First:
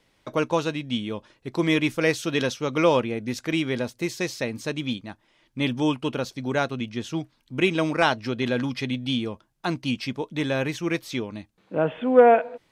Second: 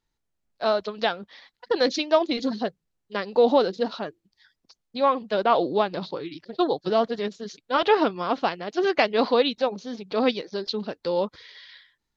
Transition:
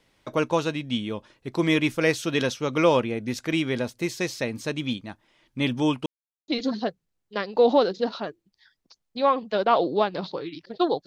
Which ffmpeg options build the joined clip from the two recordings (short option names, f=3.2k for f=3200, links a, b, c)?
-filter_complex "[0:a]apad=whole_dur=11.06,atrim=end=11.06,asplit=2[a][b];[a]atrim=end=6.06,asetpts=PTS-STARTPTS,afade=t=out:st=6.056:d=0.004:c=hsin[c];[b]atrim=start=6.06:end=6.48,asetpts=PTS-STARTPTS,volume=0[d];[1:a]atrim=start=2.27:end=6.85,asetpts=PTS-STARTPTS,afade=t=in:d=0.004:c=hsin[e];[c][d][e]concat=n=3:v=0:a=1"